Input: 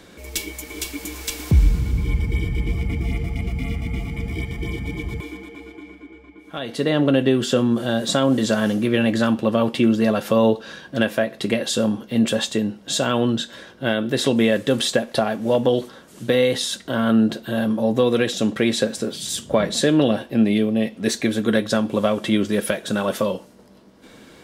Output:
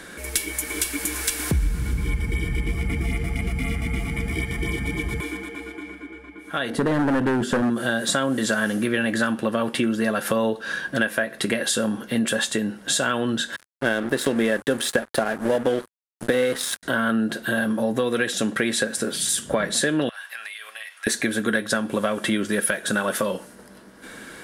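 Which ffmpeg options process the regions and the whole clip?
-filter_complex "[0:a]asettb=1/sr,asplit=3[a][b][c];[a]atrim=end=6.704[d];[b]atrim=start=6.7:end=7.7,asetpts=PTS-STARTPTS,afade=t=in:d=0.004:c=qsin,afade=t=out:st=0.996:d=0.004:c=qsin,tiltshelf=f=900:g=9,asoftclip=type=hard:threshold=-13dB[e];[c]atrim=start=7.696[f];[d][e]acrossfade=d=0.004:c1=hsin:c2=qsin[g];[g][f]acrossfade=d=0.004:c1=qsin:c2=hsin,asettb=1/sr,asplit=3[h][i][j];[h]atrim=end=13.564[k];[i]atrim=start=13.56:end=16.83,asetpts=PTS-STARTPTS,afade=t=in:d=0.004:c=qsin,afade=t=out:st=3.266:d=0.004:c=qsin,equalizer=f=400:w=0.51:g=6,aeval=exprs='sgn(val(0))*max(abs(val(0))-0.0355,0)':c=same[l];[j]atrim=start=16.826[m];[k][l]acrossfade=d=0.004:c1=hsin:c2=qsin[n];[n][m]acrossfade=d=0.004:c1=qsin:c2=hsin,asettb=1/sr,asplit=3[o][p][q];[o]atrim=end=20.094[r];[p]atrim=start=20.09:end=21.07,asetpts=PTS-STARTPTS,afade=t=in:d=0.004:c=qsin,afade=t=out:st=0.976:d=0.004:c=qsin,highpass=f=1.1k:w=0.5412,highpass=f=1.1k:w=1.3066,acompressor=threshold=-39dB:ratio=8:attack=3.2:release=140:knee=1:detection=peak[s];[q]atrim=start=21.066[t];[r][s]acrossfade=d=0.004:c1=hsin:c2=qsin[u];[u][t]acrossfade=d=0.004:c1=qsin:c2=hsin,equalizer=f=100:t=o:w=0.67:g=-5,equalizer=f=1.6k:t=o:w=0.67:g=11,equalizer=f=10k:t=o:w=0.67:g=12,acompressor=threshold=-24dB:ratio=3,volume=2.5dB"

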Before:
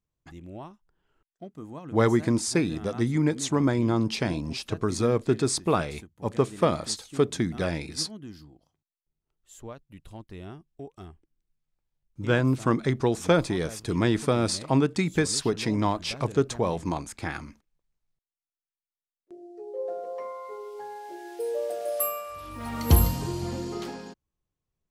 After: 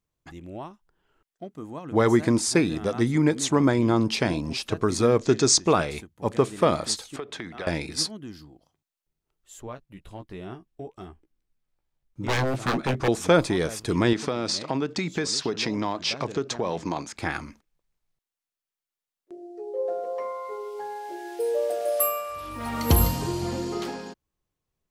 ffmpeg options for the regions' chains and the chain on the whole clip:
-filter_complex "[0:a]asettb=1/sr,asplit=3[a][b][c];[a]atrim=end=5.194[d];[b]atrim=start=5.19:end=5.73,asetpts=PTS-STARTPTS,afade=t=in:d=0.004:c=qsin,afade=t=out:st=0.536:d=0.004:c=qsin,lowpass=f=6.3k:t=q:w=4,acompressor=mode=upward:threshold=-36dB:ratio=2.5:attack=3.2:release=140:knee=2.83:detection=peak[e];[c]atrim=start=5.726[f];[d][e]acrossfade=d=0.004:c1=hsin:c2=qsin[g];[g][f]acrossfade=d=0.004:c1=qsin:c2=hsin,asettb=1/sr,asplit=3[h][i][j];[h]atrim=end=7.164[k];[i]atrim=start=7.16:end=7.67,asetpts=PTS-STARTPTS,afade=t=in:d=0.004:c=qsin,afade=t=out:st=0.506:d=0.004:c=qsin,acrossover=split=470 3900:gain=0.224 1 0.178[l][m][n];[l][m][n]amix=inputs=3:normalize=0,acompressor=threshold=-33dB:ratio=12:attack=3.2:release=140:knee=1:detection=peak[o];[j]atrim=start=7.666[p];[k][o]acrossfade=d=0.004:c1=hsin:c2=qsin[q];[q][p]acrossfade=d=0.004:c1=qsin:c2=hsin,asettb=1/sr,asplit=3[r][s][t];[r]atrim=end=9.654[u];[s]atrim=start=9.65:end=13.08,asetpts=PTS-STARTPTS,afade=t=in:d=0.004:c=qsin,afade=t=out:st=3.426:d=0.004:c=qsin,highshelf=f=3.4k:g=-5,aeval=exprs='0.0708*(abs(mod(val(0)/0.0708+3,4)-2)-1)':c=same,asplit=2[v][w];[w]adelay=16,volume=-7dB[x];[v][x]amix=inputs=2:normalize=0,atrim=end_sample=151263[y];[t]atrim=start=13.076[z];[u][y]acrossfade=d=0.004:c1=hsin:c2=qsin[aa];[aa][z]acrossfade=d=0.004:c1=qsin:c2=hsin,asettb=1/sr,asplit=3[ab][ac][ad];[ab]atrim=end=14.134[ae];[ac]atrim=start=14.13:end=17.16,asetpts=PTS-STARTPTS,afade=t=in:d=0.004:c=qsin,afade=t=out:st=3.026:d=0.004:c=qsin,highpass=130,acompressor=threshold=-26dB:ratio=4:attack=3.2:release=140:knee=1:detection=peak,highshelf=f=7.8k:t=q:w=1.5:g=-11[af];[ad]atrim=start=17.156[ag];[ae][af]acrossfade=d=0.004:c1=hsin:c2=qsin[ah];[ah][ag]acrossfade=d=0.004:c1=qsin:c2=hsin,bass=f=250:g=-4,treble=f=4k:g=-1,alimiter=level_in=11.5dB:limit=-1dB:release=50:level=0:latency=1,volume=-7dB"

